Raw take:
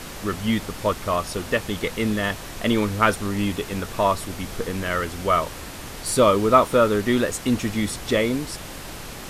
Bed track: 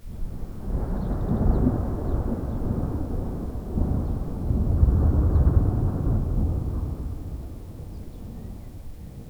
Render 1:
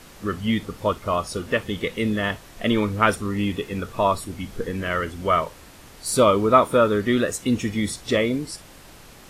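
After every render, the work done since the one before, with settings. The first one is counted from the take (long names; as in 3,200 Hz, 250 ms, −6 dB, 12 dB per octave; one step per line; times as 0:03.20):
noise reduction from a noise print 10 dB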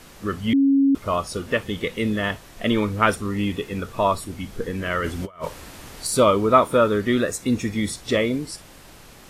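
0:00.53–0:00.95: beep over 275 Hz −13.5 dBFS
0:05.04–0:06.07: compressor whose output falls as the input rises −29 dBFS, ratio −0.5
0:07.17–0:07.76: notch filter 3,000 Hz, Q 6.9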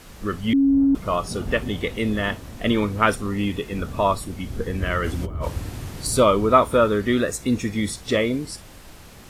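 mix in bed track −10 dB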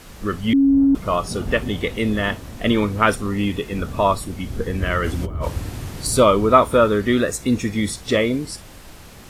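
level +2.5 dB
brickwall limiter −1 dBFS, peak gain reduction 1 dB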